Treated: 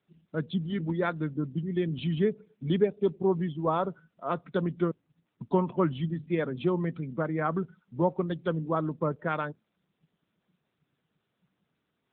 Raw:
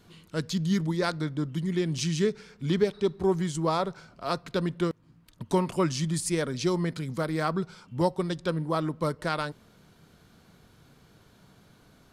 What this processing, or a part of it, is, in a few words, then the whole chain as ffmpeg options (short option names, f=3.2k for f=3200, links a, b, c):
mobile call with aggressive noise cancelling: -filter_complex "[0:a]asettb=1/sr,asplit=3[a][b][c];[a]atrim=end=5.964[d];[b]atrim=start=5.96:end=6.63,asetpts=PTS-STARTPTS,afade=t=in:d=0.004:c=qsin,afade=t=out:st=0.666:d=0.004:c=qsin,bandreject=f=50:t=h:w=6,bandreject=f=100:t=h:w=6,bandreject=f=150:t=h:w=6,bandreject=f=200:t=h:w=6,bandreject=f=250:t=h:w=6[e];[c]atrim=start=6.626[f];[d][e]acrossfade=d=0.004:c1=hsin:c2=qsin[g];[g][f]acrossfade=d=0.004:c1=qsin:c2=hsin,highpass=f=120:w=0.5412,highpass=f=120:w=1.3066,afftdn=nr=24:nf=-38" -ar 8000 -c:a libopencore_amrnb -b:a 10200